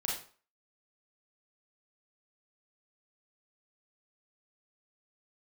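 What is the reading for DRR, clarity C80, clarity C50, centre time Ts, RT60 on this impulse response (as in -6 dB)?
-3.5 dB, 9.0 dB, 3.0 dB, 42 ms, 0.40 s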